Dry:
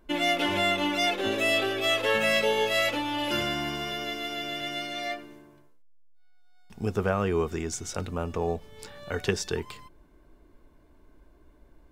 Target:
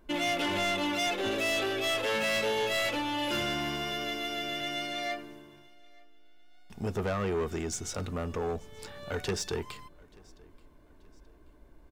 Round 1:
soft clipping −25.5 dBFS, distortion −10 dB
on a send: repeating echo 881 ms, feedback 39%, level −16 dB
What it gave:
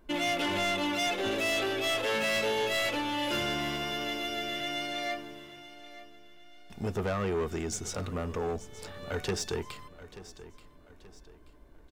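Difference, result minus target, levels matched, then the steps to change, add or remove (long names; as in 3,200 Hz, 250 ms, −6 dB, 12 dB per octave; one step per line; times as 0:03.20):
echo-to-direct +10.5 dB
change: repeating echo 881 ms, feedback 39%, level −26.5 dB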